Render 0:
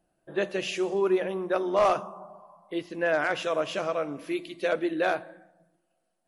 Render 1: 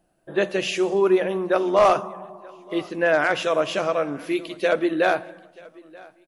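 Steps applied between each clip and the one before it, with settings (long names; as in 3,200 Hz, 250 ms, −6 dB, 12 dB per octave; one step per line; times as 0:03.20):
repeating echo 932 ms, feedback 30%, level −24 dB
level +6 dB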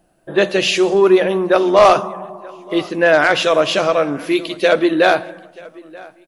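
dynamic equaliser 4,100 Hz, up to +6 dB, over −44 dBFS, Q 1.7
in parallel at −11 dB: soft clipping −21.5 dBFS, distortion −8 dB
on the sum: level +6 dB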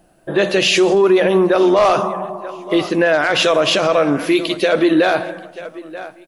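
boost into a limiter +10.5 dB
level −5 dB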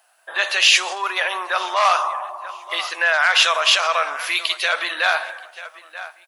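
high-pass filter 910 Hz 24 dB per octave
level +2.5 dB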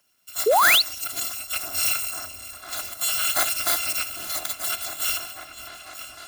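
samples in bit-reversed order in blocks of 256 samples
echo whose low-pass opens from repeat to repeat 501 ms, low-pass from 400 Hz, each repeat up 1 octave, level −6 dB
sound drawn into the spectrogram rise, 0:00.46–0:00.82, 390–4,700 Hz −10 dBFS
level −7 dB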